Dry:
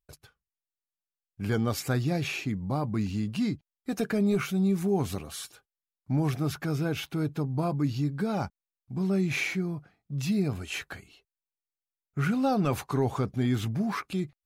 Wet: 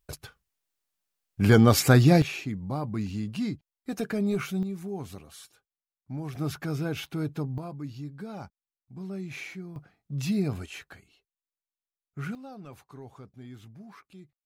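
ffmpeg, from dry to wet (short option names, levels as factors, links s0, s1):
-af "asetnsamples=n=441:p=0,asendcmd='2.22 volume volume -2dB;4.63 volume volume -9dB;6.35 volume volume -1.5dB;7.58 volume volume -10dB;9.76 volume volume 0dB;10.66 volume volume -7.5dB;12.35 volume volume -18.5dB',volume=3.16"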